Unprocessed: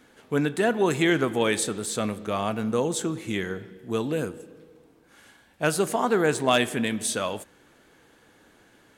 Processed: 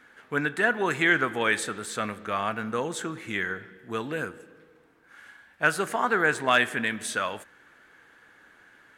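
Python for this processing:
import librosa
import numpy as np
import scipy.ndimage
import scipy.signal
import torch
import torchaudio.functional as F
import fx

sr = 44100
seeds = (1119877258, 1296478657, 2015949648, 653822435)

y = fx.peak_eq(x, sr, hz=1600.0, db=14.5, octaves=1.4)
y = F.gain(torch.from_numpy(y), -7.0).numpy()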